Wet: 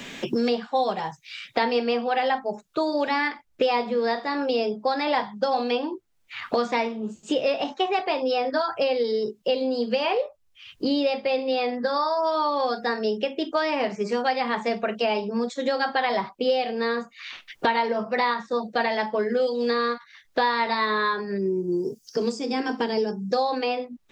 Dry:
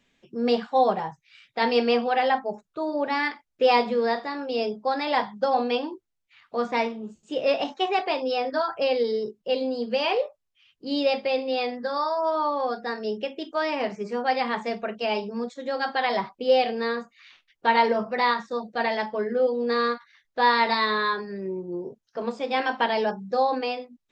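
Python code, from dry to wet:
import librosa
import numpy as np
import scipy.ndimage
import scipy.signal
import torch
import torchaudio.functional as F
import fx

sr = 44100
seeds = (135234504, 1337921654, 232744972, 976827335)

y = fx.spec_box(x, sr, start_s=21.38, length_s=1.94, low_hz=480.0, high_hz=4500.0, gain_db=-13)
y = fx.band_squash(y, sr, depth_pct=100)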